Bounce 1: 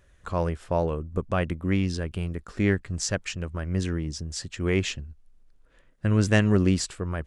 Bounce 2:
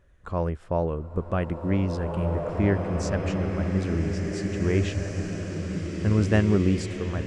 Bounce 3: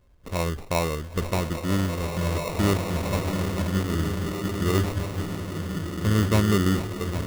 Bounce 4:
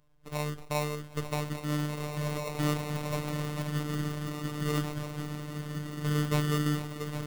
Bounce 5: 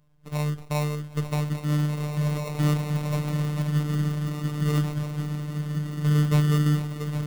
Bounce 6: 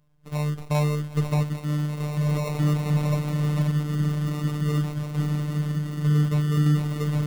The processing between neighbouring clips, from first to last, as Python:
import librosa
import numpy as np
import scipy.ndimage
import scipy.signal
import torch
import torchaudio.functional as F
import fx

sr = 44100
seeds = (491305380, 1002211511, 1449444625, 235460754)

y1 = fx.high_shelf(x, sr, hz=2200.0, db=-11.0)
y1 = fx.rev_bloom(y1, sr, seeds[0], attack_ms=2110, drr_db=0.5)
y2 = fx.sample_hold(y1, sr, seeds[1], rate_hz=1600.0, jitter_pct=0)
y2 = fx.sustainer(y2, sr, db_per_s=110.0)
y3 = fx.notch(y2, sr, hz=390.0, q=12.0)
y3 = fx.robotise(y3, sr, hz=149.0)
y3 = y3 * 10.0 ** (-4.0 / 20.0)
y4 = fx.peak_eq(y3, sr, hz=160.0, db=9.0, octaves=0.68)
y4 = y4 * 10.0 ** (1.0 / 20.0)
y5 = fx.tremolo_random(y4, sr, seeds[2], hz=3.5, depth_pct=55)
y5 = 10.0 ** (-15.0 / 20.0) * np.tanh(y5 / 10.0 ** (-15.0 / 20.0))
y5 = y5 * 10.0 ** (5.0 / 20.0)